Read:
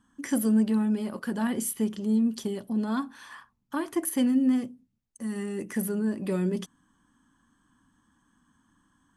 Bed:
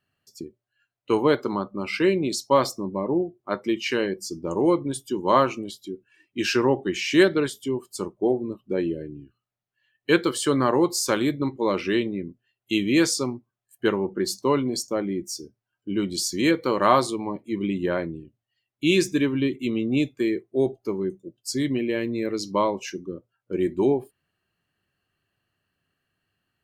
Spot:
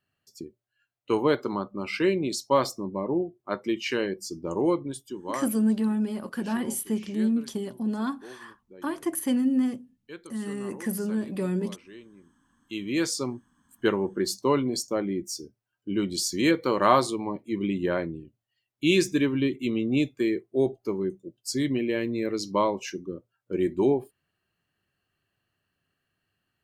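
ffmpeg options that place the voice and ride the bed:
-filter_complex "[0:a]adelay=5100,volume=-0.5dB[a];[1:a]volume=19dB,afade=t=out:st=4.6:d=0.94:silence=0.0944061,afade=t=in:st=12.48:d=1:silence=0.0794328[b];[a][b]amix=inputs=2:normalize=0"

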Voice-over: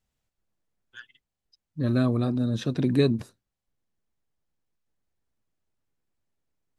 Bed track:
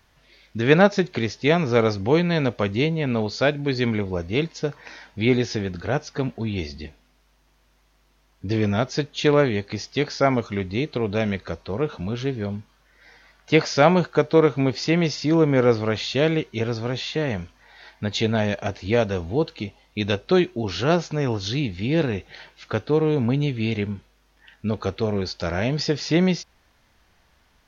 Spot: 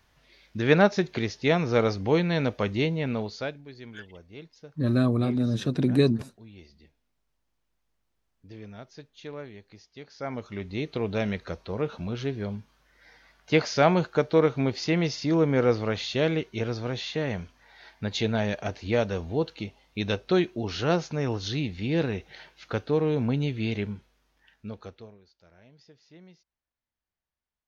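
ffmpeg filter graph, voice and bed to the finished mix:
-filter_complex "[0:a]adelay=3000,volume=0.5dB[a];[1:a]volume=13dB,afade=t=out:st=2.99:d=0.65:silence=0.133352,afade=t=in:st=10.09:d=0.92:silence=0.141254,afade=t=out:st=23.76:d=1.42:silence=0.0398107[b];[a][b]amix=inputs=2:normalize=0"

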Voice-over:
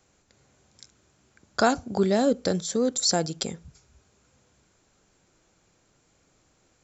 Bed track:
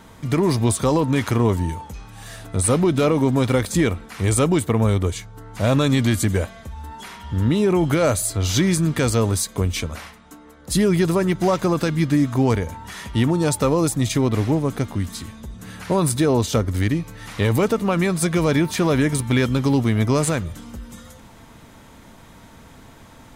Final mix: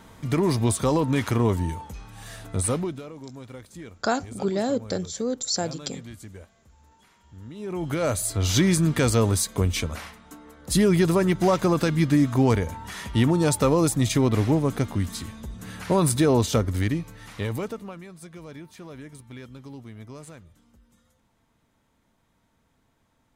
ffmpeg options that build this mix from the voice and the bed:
-filter_complex "[0:a]adelay=2450,volume=-3dB[a];[1:a]volume=17.5dB,afade=t=out:st=2.53:d=0.5:silence=0.112202,afade=t=in:st=7.54:d=0.97:silence=0.0891251,afade=t=out:st=16.41:d=1.6:silence=0.0841395[b];[a][b]amix=inputs=2:normalize=0"

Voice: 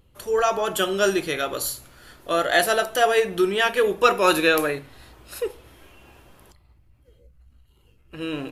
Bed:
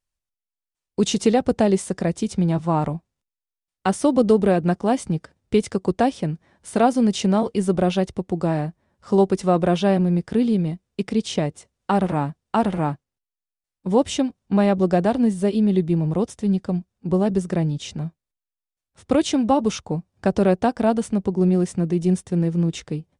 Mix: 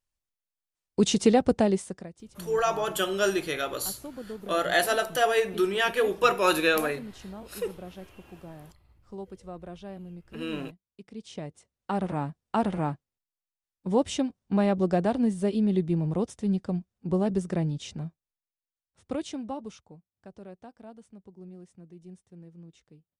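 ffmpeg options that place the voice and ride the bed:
-filter_complex "[0:a]adelay=2200,volume=-4.5dB[a];[1:a]volume=14.5dB,afade=t=out:st=1.48:d=0.61:silence=0.0944061,afade=t=in:st=11.07:d=1.41:silence=0.141254,afade=t=out:st=17.68:d=2.33:silence=0.0841395[b];[a][b]amix=inputs=2:normalize=0"

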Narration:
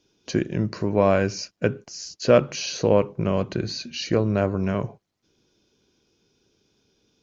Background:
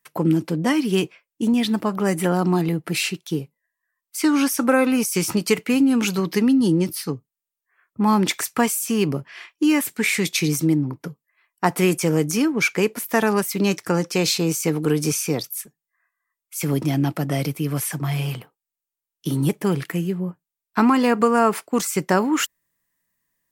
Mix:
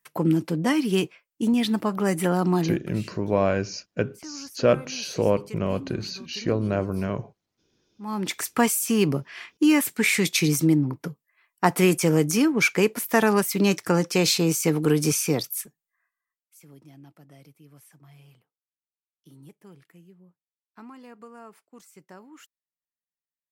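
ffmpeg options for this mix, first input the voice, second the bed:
-filter_complex "[0:a]adelay=2350,volume=-3dB[a];[1:a]volume=20dB,afade=t=out:st=2.62:d=0.33:silence=0.0944061,afade=t=in:st=8:d=0.67:silence=0.0749894,afade=t=out:st=15.58:d=1.03:silence=0.0421697[b];[a][b]amix=inputs=2:normalize=0"

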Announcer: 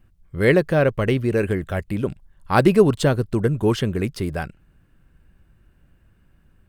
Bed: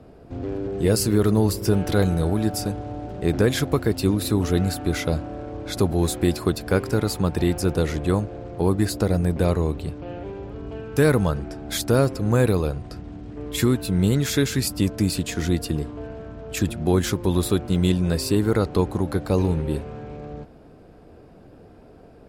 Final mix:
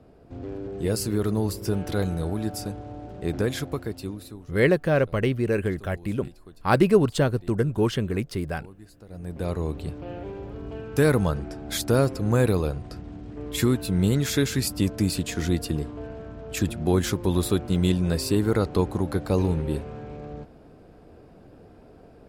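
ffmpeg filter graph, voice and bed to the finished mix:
-filter_complex "[0:a]adelay=4150,volume=-3.5dB[a];[1:a]volume=18.5dB,afade=t=out:st=3.47:d=0.99:silence=0.0944061,afade=t=in:st=9.07:d=0.87:silence=0.0595662[b];[a][b]amix=inputs=2:normalize=0"

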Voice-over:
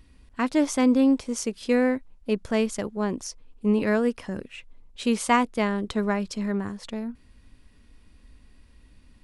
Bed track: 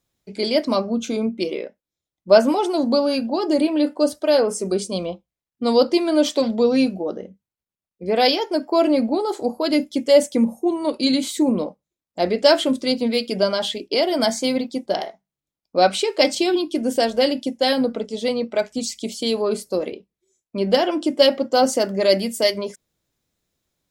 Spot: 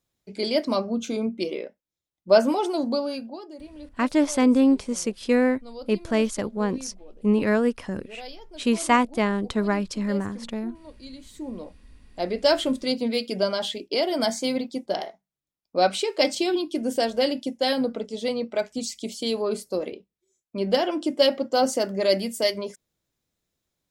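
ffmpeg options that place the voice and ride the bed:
-filter_complex "[0:a]adelay=3600,volume=1.5dB[a];[1:a]volume=15dB,afade=t=out:st=2.68:d=0.83:silence=0.105925,afade=t=in:st=11.23:d=1.43:silence=0.112202[b];[a][b]amix=inputs=2:normalize=0"

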